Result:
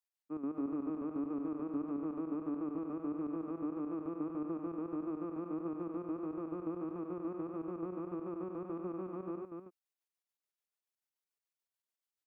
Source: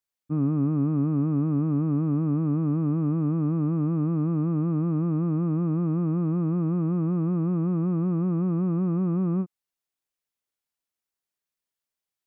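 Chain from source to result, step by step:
high-pass filter 310 Hz 24 dB per octave
square-wave tremolo 6.9 Hz, depth 65%, duty 55%
on a send: single-tap delay 241 ms −4.5 dB
on the sum: level −6 dB

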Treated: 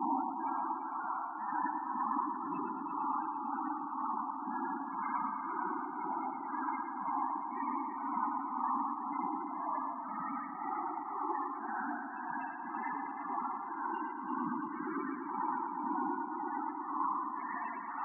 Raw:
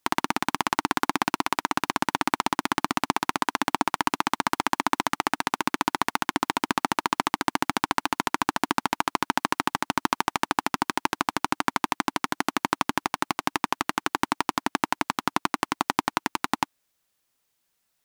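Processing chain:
extreme stretch with random phases 7.7×, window 0.10 s, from 0:03.80
spectral peaks only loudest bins 16
echo machine with several playback heads 113 ms, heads first and third, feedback 64%, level −10 dB
level −9 dB

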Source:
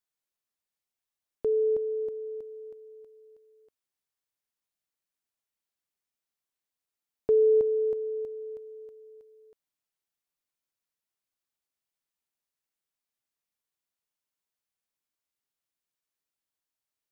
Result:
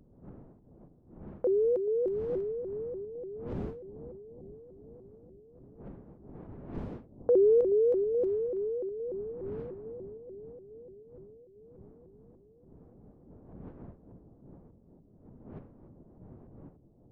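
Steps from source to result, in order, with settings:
wind on the microphone 220 Hz −45 dBFS
low-pass that shuts in the quiet parts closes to 540 Hz, open at −29 dBFS
low-shelf EQ 180 Hz −7.5 dB
bucket-brigade delay 426 ms, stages 2,048, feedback 69%, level −12.5 dB
pitch modulation by a square or saw wave saw up 3.4 Hz, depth 250 cents

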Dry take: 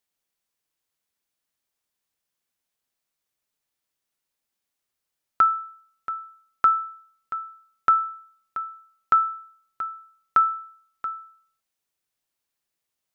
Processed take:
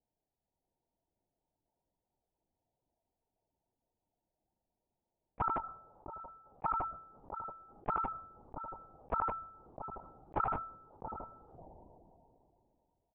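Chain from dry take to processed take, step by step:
reverb reduction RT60 0.76 s
0:05.51–0:06.71: high-pass filter 410 Hz 6 dB per octave
automatic gain control gain up to 4 dB
Chebyshev low-pass with heavy ripple 950 Hz, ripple 6 dB
in parallel at −9 dB: sine wavefolder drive 6 dB, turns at −20 dBFS
0:09.84–0:11.08: on the sum: double-tracking delay 21 ms −8.5 dB
on a send: repeating echo 85 ms, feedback 24%, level −22 dB
on the sum: linear-prediction vocoder at 8 kHz whisper
level that may fall only so fast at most 21 dB per second
level +2 dB

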